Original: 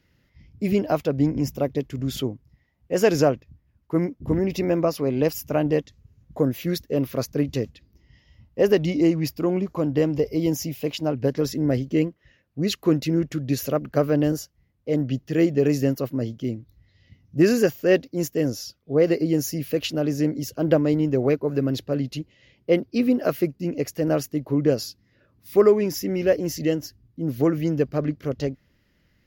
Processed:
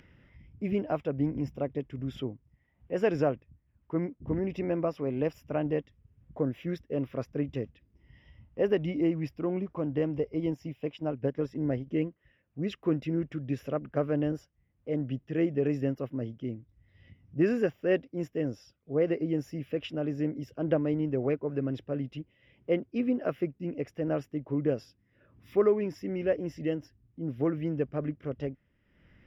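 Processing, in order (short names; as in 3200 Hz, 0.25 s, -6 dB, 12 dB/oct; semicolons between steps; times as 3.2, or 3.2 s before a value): polynomial smoothing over 25 samples; 10.21–11.87 transient shaper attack +1 dB, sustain -6 dB; upward compressor, threshold -38 dBFS; gain -8 dB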